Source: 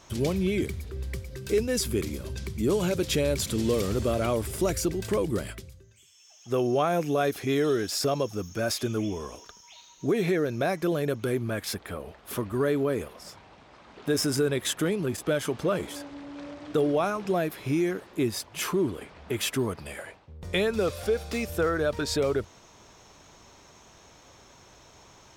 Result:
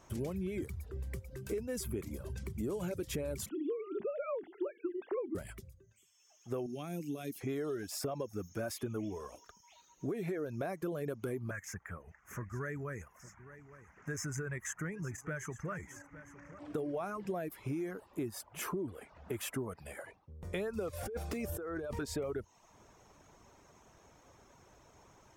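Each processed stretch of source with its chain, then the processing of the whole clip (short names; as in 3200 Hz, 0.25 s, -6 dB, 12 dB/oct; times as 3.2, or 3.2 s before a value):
3.49–5.35 sine-wave speech + notches 50/100/150/200/250/300/350/400 Hz
6.66–7.41 HPF 150 Hz + band shelf 890 Hz -15.5 dB 2.4 oct
11.51–16.59 EQ curve 160 Hz 0 dB, 260 Hz -11 dB, 720 Hz -11 dB, 1900 Hz +6 dB, 4000 Hz -23 dB, 6400 Hz +7 dB, 9200 Hz -11 dB + echo 0.858 s -16 dB
20.93–21.99 bell 340 Hz +4 dB 0.72 oct + negative-ratio compressor -31 dBFS
whole clip: reverb removal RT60 0.51 s; bell 4000 Hz -10.5 dB 1.4 oct; compressor, threshold -29 dBFS; gain -5 dB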